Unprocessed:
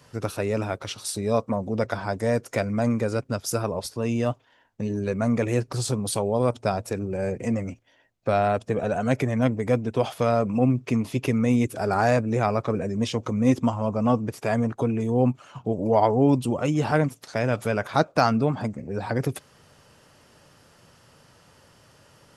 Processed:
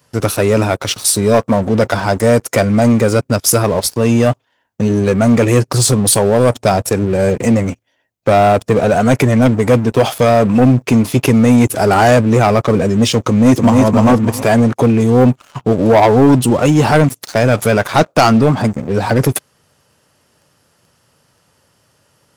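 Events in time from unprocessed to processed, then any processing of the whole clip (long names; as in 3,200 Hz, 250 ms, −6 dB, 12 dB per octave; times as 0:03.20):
0:13.28–0:13.83: delay throw 300 ms, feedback 35%, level −3.5 dB
whole clip: high-pass filter 44 Hz 12 dB per octave; high-shelf EQ 9,500 Hz +11 dB; leveller curve on the samples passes 3; level +3 dB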